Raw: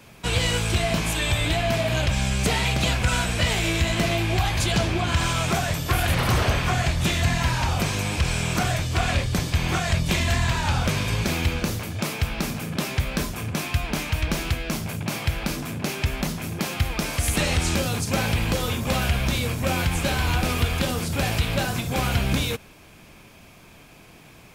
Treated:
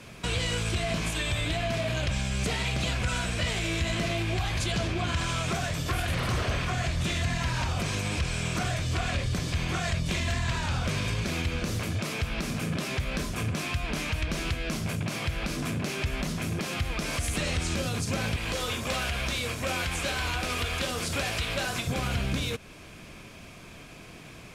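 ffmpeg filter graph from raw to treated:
-filter_complex "[0:a]asettb=1/sr,asplit=3[s0][s1][s2];[s0]atrim=end=18.364[s3];[s1]atrim=start=18.36:end=21.87,asetpts=PTS-STARTPTS,afade=t=in:d=0.004:c=qsin,afade=t=out:st=3.506:d=0.004:c=qsin,equalizer=f=140:w=0.51:g=-10,volume=8.41,asoftclip=hard,volume=0.119,highpass=45[s4];[s2]atrim=start=21.866[s5];[s3][s4]acrossfade=d=0.004:c1=hsin:c2=qsin[s6];[s6][s5]acrossfade=d=0.004:c1=qsin:c2=hsin,alimiter=limit=0.075:level=0:latency=1:release=248,lowpass=10000,equalizer=f=850:w=6.9:g=-7,volume=1.33"

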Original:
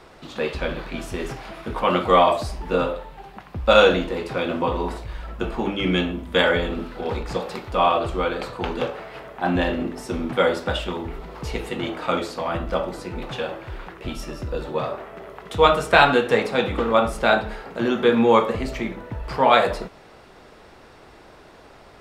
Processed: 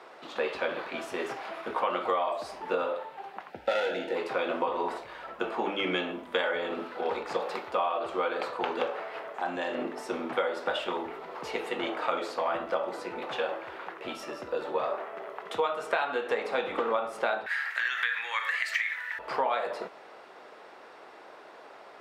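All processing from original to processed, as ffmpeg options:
-filter_complex "[0:a]asettb=1/sr,asplit=3[s0][s1][s2];[s0]atrim=end=3.504[s3];[s1]atrim=start=3.5:end=4.15,asetpts=PTS-STARTPTS,afade=t=in:d=0.004:c=qsin,afade=t=out:st=0.646:d=0.004:c=qsin,aeval=exprs='clip(val(0),-1,0.119)':c=same,asuperstop=centerf=1100:order=8:qfactor=3[s4];[s2]atrim=start=4.146[s5];[s3][s4]acrossfade=d=0.004:c1=hsin:c2=qsin[s6];[s6][s5]acrossfade=d=0.004:c1=qsin:c2=hsin,asettb=1/sr,asplit=3[s7][s8][s9];[s7]atrim=end=9.344[s10];[s8]atrim=start=9.34:end=9.75,asetpts=PTS-STARTPTS,afade=t=in:d=0.004:c=qsin,afade=t=out:st=0.406:d=0.004:c=qsin,equalizer=f=7200:t=o:w=0.74:g=12.5,acompressor=threshold=0.0398:ratio=2.5:attack=3.2:release=140:knee=1:detection=peak[s11];[s9]atrim=start=9.746[s12];[s10][s11]acrossfade=d=0.004:c1=hsin:c2=qsin[s13];[s13][s12]acrossfade=d=0.004:c1=qsin:c2=hsin,asettb=1/sr,asplit=3[s14][s15][s16];[s14]atrim=end=17.464[s17];[s15]atrim=start=17.46:end=19.19,asetpts=PTS-STARTPTS,afade=t=in:d=0.004:c=qsin,afade=t=out:st=1.726:d=0.004:c=qsin,highshelf=f=3500:g=12,acompressor=threshold=0.0631:ratio=2.5:attack=3.2:release=140:knee=1:detection=peak,highpass=f=1800:t=q:w=7.1[s18];[s16]atrim=start=19.186[s19];[s17][s18]acrossfade=d=0.004:c1=hsin:c2=qsin[s20];[s20][s19]acrossfade=d=0.004:c1=qsin:c2=hsin,highpass=490,highshelf=f=3500:g=-11.5,acompressor=threshold=0.0501:ratio=16,volume=1.19"

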